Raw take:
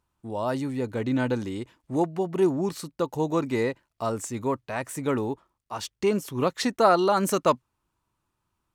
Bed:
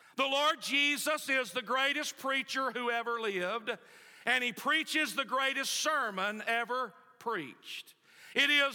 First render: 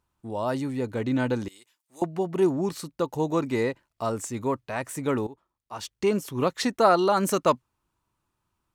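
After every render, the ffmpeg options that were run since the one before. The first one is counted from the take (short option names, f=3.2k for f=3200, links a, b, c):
-filter_complex "[0:a]asettb=1/sr,asplit=3[a][b][c];[a]atrim=end=1.484[d];[b]atrim=start=1.48:end=2.02,asetpts=PTS-STARTPTS,afade=t=in:d=0.004:c=qsin,afade=t=out:st=0.536:d=0.004:c=qsin,aderivative[e];[c]atrim=start=2.016[f];[d][e]acrossfade=d=0.004:c1=hsin:c2=qsin[g];[g][f]acrossfade=d=0.004:c1=qsin:c2=hsin,asplit=2[h][i];[h]atrim=end=5.27,asetpts=PTS-STARTPTS,afade=t=out:st=5.266:d=0.004:c=hsin:silence=0.158489[j];[i]atrim=start=5.27,asetpts=PTS-STARTPTS,afade=t=in:d=0.77:silence=0.158489[k];[j][k]concat=n=2:v=0:a=1"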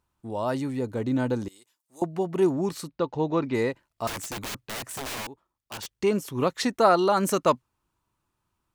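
-filter_complex "[0:a]asettb=1/sr,asplit=3[a][b][c];[a]atrim=end=0.794[d];[b]atrim=start=0.79:end=2.14,asetpts=PTS-STARTPTS,afade=t=in:d=0.004:c=qsin,afade=t=out:st=1.346:d=0.004:c=qsin,equalizer=f=2.3k:w=0.89:g=-6.5[e];[c]atrim=start=2.136[f];[d][e]acrossfade=d=0.004:c1=hsin:c2=qsin[g];[g][f]acrossfade=d=0.004:c1=qsin:c2=hsin,asplit=3[h][i][j];[h]afade=t=out:st=2.87:d=0.02[k];[i]lowpass=f=4.7k:w=0.5412,lowpass=f=4.7k:w=1.3066,afade=t=in:st=2.87:d=0.02,afade=t=out:st=3.53:d=0.02[l];[j]afade=t=in:st=3.53:d=0.02[m];[k][l][m]amix=inputs=3:normalize=0,asettb=1/sr,asplit=3[n][o][p];[n]atrim=end=4.074[q];[o]atrim=start=4.07:end=5.96,asetpts=PTS-STARTPTS,afade=t=in:d=0.004:c=qsin,afade=t=out:st=1.886:d=0.004:c=qsin,aeval=exprs='(mod(28.2*val(0)+1,2)-1)/28.2':c=same[r];[p]atrim=start=5.956[s];[q][r]acrossfade=d=0.004:c1=hsin:c2=qsin[t];[t][s]acrossfade=d=0.004:c1=qsin:c2=hsin"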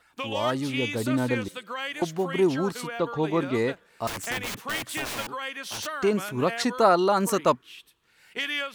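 -filter_complex "[1:a]volume=-3dB[a];[0:a][a]amix=inputs=2:normalize=0"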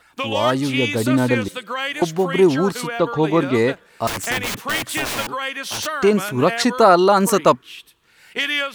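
-af "volume=8dB,alimiter=limit=-1dB:level=0:latency=1"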